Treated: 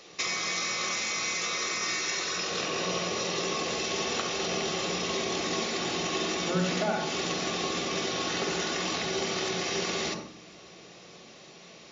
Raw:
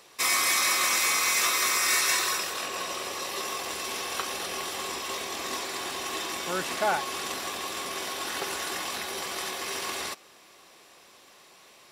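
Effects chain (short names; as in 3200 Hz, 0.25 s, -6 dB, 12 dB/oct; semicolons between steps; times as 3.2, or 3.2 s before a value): thirty-one-band EQ 315 Hz +4 dB, 1000 Hz -10 dB, 1600 Hz -5 dB; compressor 12:1, threshold -31 dBFS, peak gain reduction 10 dB; on a send at -4 dB: reverb RT60 0.45 s, pre-delay 46 ms; on the sum: gain +4.5 dB; MP3 40 kbps 16000 Hz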